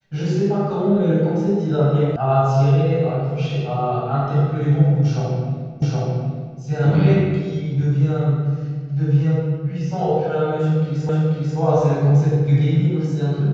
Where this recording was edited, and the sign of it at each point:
0:02.16: cut off before it has died away
0:05.82: the same again, the last 0.77 s
0:11.09: the same again, the last 0.49 s

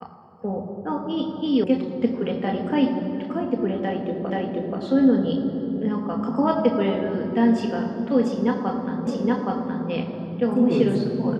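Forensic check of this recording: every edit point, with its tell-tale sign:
0:01.64: cut off before it has died away
0:04.30: the same again, the last 0.48 s
0:09.07: the same again, the last 0.82 s

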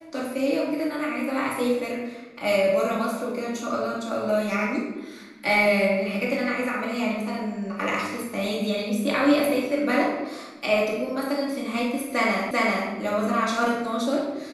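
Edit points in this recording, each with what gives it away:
0:12.51: the same again, the last 0.39 s

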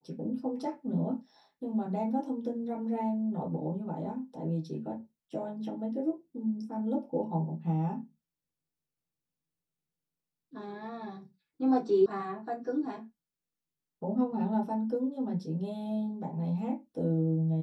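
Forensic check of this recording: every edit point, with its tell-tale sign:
0:12.06: cut off before it has died away

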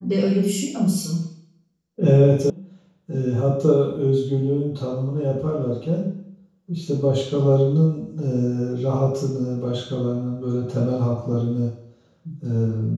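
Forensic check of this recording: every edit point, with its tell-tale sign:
0:02.50: cut off before it has died away

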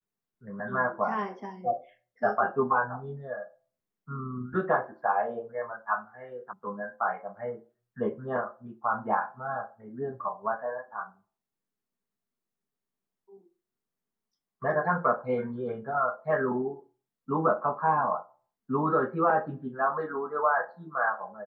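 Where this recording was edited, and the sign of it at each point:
0:06.53: cut off before it has died away

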